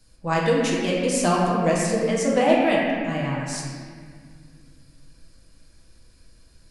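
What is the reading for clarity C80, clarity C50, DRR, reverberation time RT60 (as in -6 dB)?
0.5 dB, -1.0 dB, -5.0 dB, 1.9 s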